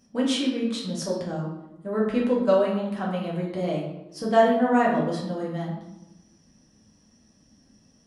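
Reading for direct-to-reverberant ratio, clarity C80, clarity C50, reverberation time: -4.5 dB, 6.0 dB, 3.5 dB, 0.95 s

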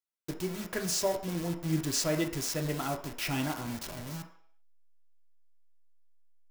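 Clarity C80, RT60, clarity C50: 12.0 dB, 0.60 s, 9.0 dB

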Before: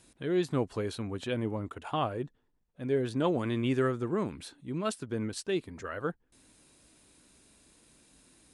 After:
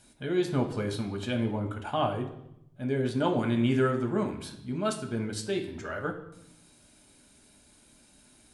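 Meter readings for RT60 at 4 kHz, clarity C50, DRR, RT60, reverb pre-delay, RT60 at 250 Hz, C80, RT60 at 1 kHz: 0.75 s, 9.5 dB, 3.0 dB, 0.80 s, 5 ms, 1.1 s, 13.0 dB, 0.75 s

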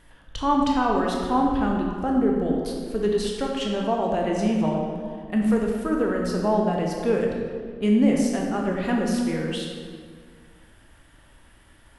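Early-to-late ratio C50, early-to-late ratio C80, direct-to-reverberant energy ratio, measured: 1.5 dB, 3.0 dB, -0.5 dB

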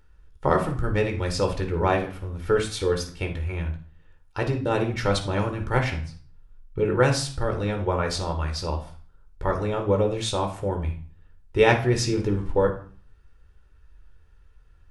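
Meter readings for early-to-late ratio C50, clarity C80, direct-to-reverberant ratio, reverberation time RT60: 9.0 dB, 15.0 dB, 3.5 dB, 0.45 s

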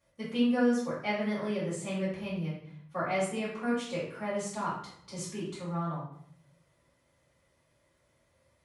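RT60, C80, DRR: 0.65 s, 7.0 dB, -9.5 dB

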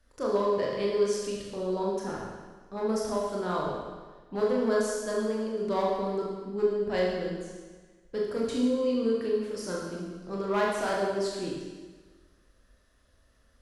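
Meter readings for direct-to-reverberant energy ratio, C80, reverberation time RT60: -4.0 dB, 3.0 dB, 1.4 s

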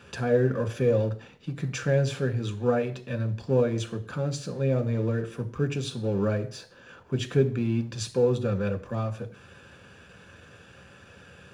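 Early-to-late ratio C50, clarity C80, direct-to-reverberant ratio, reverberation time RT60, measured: 15.0 dB, 18.5 dB, 5.5 dB, 0.50 s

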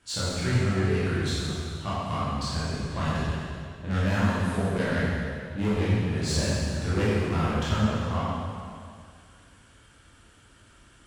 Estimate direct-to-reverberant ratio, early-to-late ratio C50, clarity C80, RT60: -9.5 dB, -4.0 dB, -1.5 dB, 2.2 s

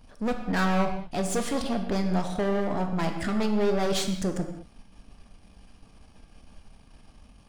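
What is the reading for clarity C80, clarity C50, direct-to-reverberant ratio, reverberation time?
9.0 dB, 7.0 dB, 4.5 dB, not exponential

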